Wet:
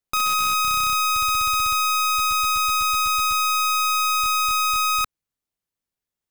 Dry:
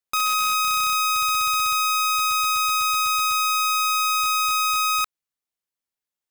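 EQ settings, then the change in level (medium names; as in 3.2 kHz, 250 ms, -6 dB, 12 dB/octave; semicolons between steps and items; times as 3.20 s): bass shelf 220 Hz +6 dB; bass shelf 480 Hz +5.5 dB; 0.0 dB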